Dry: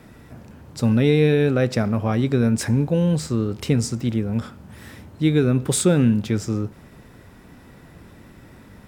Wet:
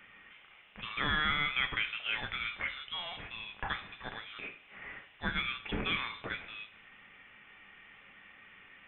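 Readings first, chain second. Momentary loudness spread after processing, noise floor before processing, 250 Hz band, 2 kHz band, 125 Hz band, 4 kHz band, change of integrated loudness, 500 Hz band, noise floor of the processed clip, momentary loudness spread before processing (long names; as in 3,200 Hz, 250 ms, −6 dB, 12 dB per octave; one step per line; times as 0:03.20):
24 LU, −47 dBFS, −26.5 dB, +0.5 dB, −27.5 dB, −1.5 dB, −14.5 dB, −26.5 dB, −58 dBFS, 10 LU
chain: Chebyshev high-pass filter 1,500 Hz, order 2
coupled-rooms reverb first 0.38 s, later 1.6 s, DRR 6.5 dB
voice inversion scrambler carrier 3,800 Hz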